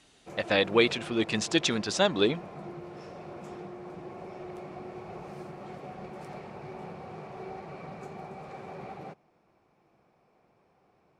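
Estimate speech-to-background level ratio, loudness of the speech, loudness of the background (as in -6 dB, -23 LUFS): 16.5 dB, -26.5 LUFS, -43.0 LUFS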